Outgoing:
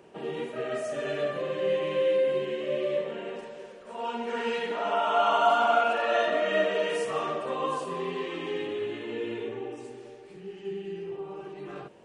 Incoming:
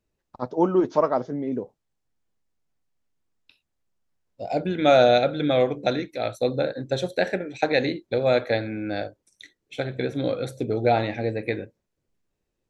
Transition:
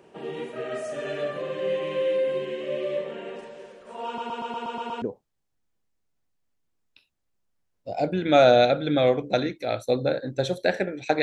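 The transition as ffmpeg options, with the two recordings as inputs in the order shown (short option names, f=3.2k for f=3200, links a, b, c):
-filter_complex "[0:a]apad=whole_dur=11.22,atrim=end=11.22,asplit=8[a][b][c][d][e][f][g][h];[a]atrim=end=4.182[i];[b]atrim=start=4.058:end=4.182[j];[c]atrim=start=4.058:end=4.182[k];[d]atrim=start=4.058:end=4.182[l];[e]atrim=start=4.058:end=4.182[m];[f]atrim=start=4.058:end=4.182[n];[g]atrim=start=4.058:end=4.182[o];[h]atrim=start=4.058:end=4.182[p];[1:a]atrim=start=1.548:end=7.75[q];[i][j]acrossfade=d=0.004:c1=hsin:c2=hsin[r];[r][k]acrossfade=d=0.004:c1=hsin:c2=hsin[s];[s][l]acrossfade=d=0.004:c1=hsin:c2=hsin[t];[t][m]acrossfade=d=0.004:c1=hsin:c2=hsin[u];[u][n]acrossfade=d=0.004:c1=hsin:c2=hsin[v];[v][o]acrossfade=d=0.004:c1=hsin:c2=hsin[w];[w][p]acrossfade=d=0.004:c1=hsin:c2=hsin[x];[x][q]acrossfade=d=0.004:c1=hsin:c2=hsin"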